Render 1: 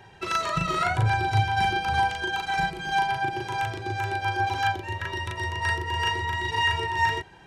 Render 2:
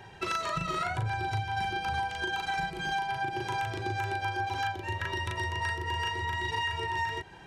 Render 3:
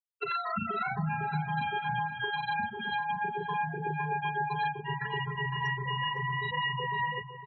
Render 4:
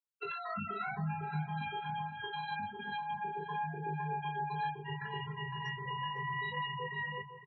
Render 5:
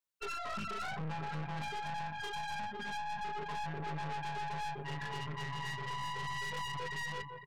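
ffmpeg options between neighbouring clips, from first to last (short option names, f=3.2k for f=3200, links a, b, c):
-af "acompressor=threshold=-30dB:ratio=6,volume=1dB"
-filter_complex "[0:a]afftfilt=real='re*gte(hypot(re,im),0.0501)':imag='im*gte(hypot(re,im),0.0501)':win_size=1024:overlap=0.75,afreqshift=48,asplit=2[a][b];[b]adelay=507,lowpass=f=2.3k:p=1,volume=-12dB,asplit=2[c][d];[d]adelay=507,lowpass=f=2.3k:p=1,volume=0.52,asplit=2[e][f];[f]adelay=507,lowpass=f=2.3k:p=1,volume=0.52,asplit=2[g][h];[h]adelay=507,lowpass=f=2.3k:p=1,volume=0.52,asplit=2[i][j];[j]adelay=507,lowpass=f=2.3k:p=1,volume=0.52[k];[a][c][e][g][i][k]amix=inputs=6:normalize=0"
-filter_complex "[0:a]asplit=2[a][b];[b]adelay=20,volume=-2.5dB[c];[a][c]amix=inputs=2:normalize=0,volume=-7.5dB"
-af "aeval=exprs='(tanh(158*val(0)+0.7)-tanh(0.7))/158':c=same,volume=6.5dB"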